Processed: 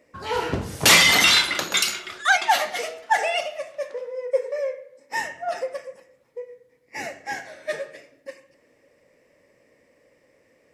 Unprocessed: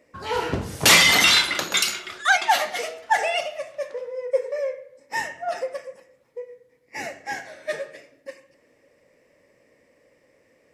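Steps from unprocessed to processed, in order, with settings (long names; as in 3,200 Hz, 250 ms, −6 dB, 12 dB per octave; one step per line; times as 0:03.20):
0:03.03–0:05.24: high-pass filter 150 Hz 12 dB per octave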